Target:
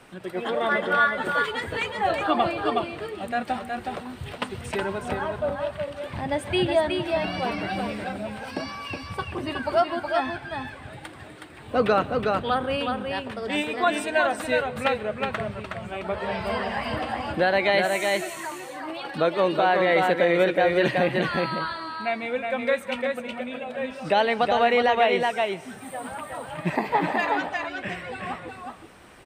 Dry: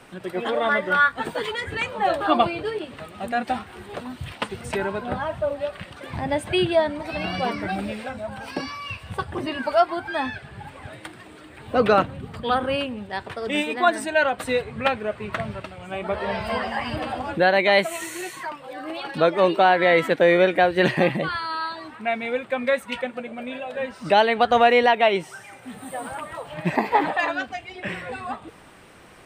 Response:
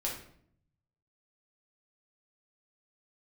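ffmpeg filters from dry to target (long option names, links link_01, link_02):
-filter_complex "[0:a]asplit=2[link_01][link_02];[link_02]aecho=0:1:368:0.596[link_03];[link_01][link_03]amix=inputs=2:normalize=0,alimiter=limit=-8dB:level=0:latency=1:release=73,asplit=2[link_04][link_05];[1:a]atrim=start_sample=2205,adelay=128[link_06];[link_05][link_06]afir=irnorm=-1:irlink=0,volume=-23.5dB[link_07];[link_04][link_07]amix=inputs=2:normalize=0,volume=-2.5dB"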